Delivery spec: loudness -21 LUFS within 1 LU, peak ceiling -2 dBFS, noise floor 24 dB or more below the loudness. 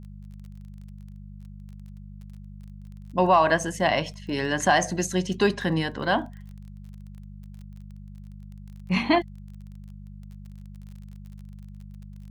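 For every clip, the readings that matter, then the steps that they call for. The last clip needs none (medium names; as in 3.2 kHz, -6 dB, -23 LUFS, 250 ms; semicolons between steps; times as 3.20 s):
tick rate 28 per s; hum 50 Hz; highest harmonic 200 Hz; hum level -40 dBFS; loudness -24.0 LUFS; peak level -7.5 dBFS; loudness target -21.0 LUFS
-> de-click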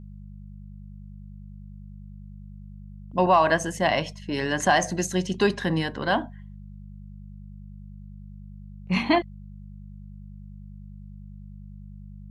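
tick rate 0 per s; hum 50 Hz; highest harmonic 200 Hz; hum level -40 dBFS
-> de-hum 50 Hz, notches 4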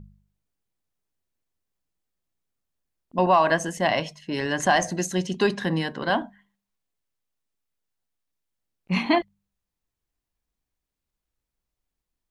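hum not found; loudness -24.0 LUFS; peak level -7.0 dBFS; loudness target -21.0 LUFS
-> trim +3 dB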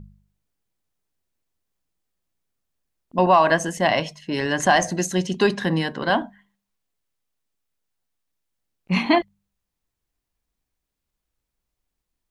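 loudness -21.0 LUFS; peak level -4.0 dBFS; noise floor -83 dBFS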